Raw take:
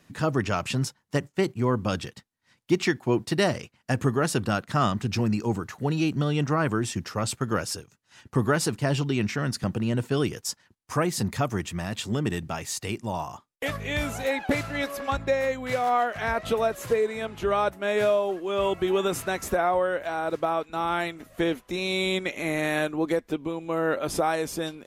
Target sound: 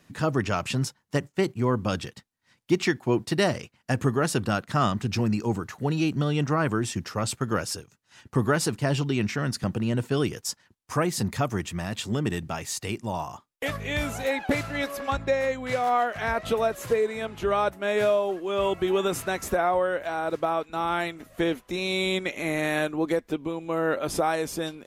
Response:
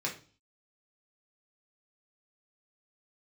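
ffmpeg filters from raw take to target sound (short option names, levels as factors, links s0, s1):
-filter_complex "[0:a]asettb=1/sr,asplit=3[s0][s1][s2];[s0]atrim=end=15.144[s3];[s1]atrim=start=15.14:end=15.83,asetpts=PTS-STARTPTS,afade=t=in:d=0.004:c=qsin,afade=t=out:st=0.686:d=0.004:c=qsin,lowpass=11000[s4];[s2]atrim=start=15.826[s5];[s3][s4]acrossfade=d=0.004:c1=hsin:c2=qsin[s6];[s6][s5]acrossfade=d=0.004:c1=qsin:c2=hsin"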